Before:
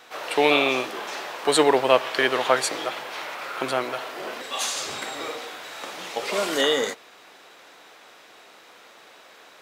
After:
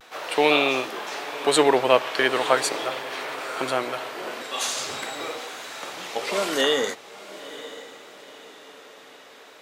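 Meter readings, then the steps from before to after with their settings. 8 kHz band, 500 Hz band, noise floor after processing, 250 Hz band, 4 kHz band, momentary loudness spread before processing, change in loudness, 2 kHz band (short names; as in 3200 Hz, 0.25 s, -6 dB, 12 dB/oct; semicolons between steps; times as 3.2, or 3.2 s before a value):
0.0 dB, 0.0 dB, -48 dBFS, 0.0 dB, 0.0 dB, 15 LU, 0.0 dB, 0.0 dB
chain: diffused feedback echo 0.958 s, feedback 44%, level -15.5 dB; vibrato 0.42 Hz 28 cents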